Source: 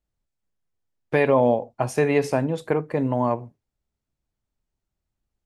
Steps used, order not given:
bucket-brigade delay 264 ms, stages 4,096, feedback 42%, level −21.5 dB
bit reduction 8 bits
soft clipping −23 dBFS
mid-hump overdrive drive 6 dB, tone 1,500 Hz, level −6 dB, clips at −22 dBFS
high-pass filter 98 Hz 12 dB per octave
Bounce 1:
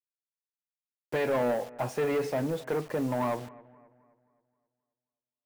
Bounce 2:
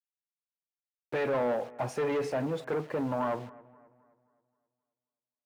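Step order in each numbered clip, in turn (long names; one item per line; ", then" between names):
mid-hump overdrive, then high-pass filter, then soft clipping, then bit reduction, then bucket-brigade delay
soft clipping, then bit reduction, then high-pass filter, then mid-hump overdrive, then bucket-brigade delay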